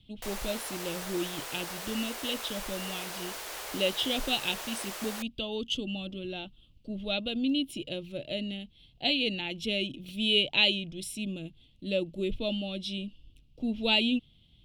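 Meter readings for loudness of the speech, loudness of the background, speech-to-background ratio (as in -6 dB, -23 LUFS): -31.5 LUFS, -38.0 LUFS, 6.5 dB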